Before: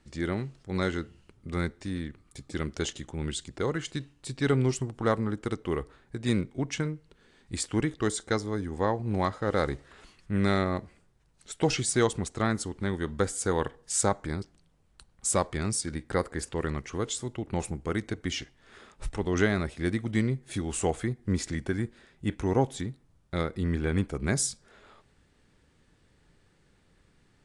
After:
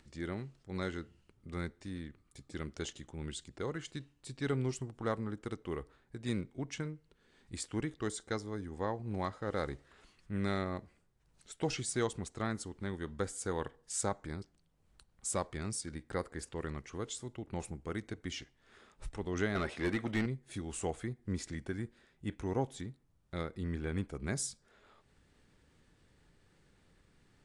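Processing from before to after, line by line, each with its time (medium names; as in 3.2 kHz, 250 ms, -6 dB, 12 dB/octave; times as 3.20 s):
19.55–20.26 s: overdrive pedal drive 22 dB, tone 2.2 kHz, clips at -13.5 dBFS
whole clip: upward compressor, threshold -49 dBFS; trim -9 dB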